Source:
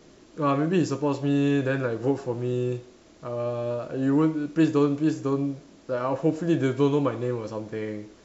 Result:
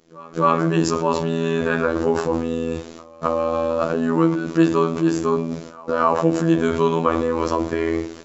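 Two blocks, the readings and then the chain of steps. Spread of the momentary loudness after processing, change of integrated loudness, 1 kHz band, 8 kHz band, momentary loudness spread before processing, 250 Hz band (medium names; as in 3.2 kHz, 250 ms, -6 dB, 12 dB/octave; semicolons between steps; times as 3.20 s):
8 LU, +5.0 dB, +11.0 dB, no reading, 10 LU, +3.5 dB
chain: bass shelf 82 Hz -3.5 dB; in parallel at 0 dB: compressor with a negative ratio -34 dBFS, ratio -1; on the sum: gate with hold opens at -30 dBFS; dynamic bell 1.1 kHz, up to +7 dB, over -42 dBFS, Q 1.8; on a send: reverse echo 262 ms -23 dB; on the sum: robot voice 82.2 Hz; trim +5.5 dB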